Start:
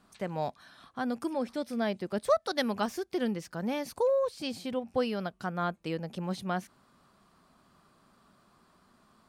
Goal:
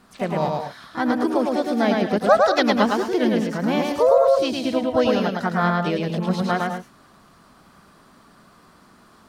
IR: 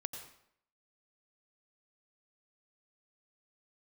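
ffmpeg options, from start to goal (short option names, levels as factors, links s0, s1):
-filter_complex "[0:a]acrossover=split=5000[s0][s1];[s1]acompressor=threshold=0.00141:ratio=4:attack=1:release=60[s2];[s0][s2]amix=inputs=2:normalize=0,asplit=2[s3][s4];[s4]asetrate=55563,aresample=44100,atempo=0.793701,volume=0.447[s5];[s3][s5]amix=inputs=2:normalize=0,asplit=2[s6][s7];[1:a]atrim=start_sample=2205,afade=t=out:st=0.18:d=0.01,atrim=end_sample=8379,adelay=108[s8];[s7][s8]afir=irnorm=-1:irlink=0,volume=0.944[s9];[s6][s9]amix=inputs=2:normalize=0,volume=2.82"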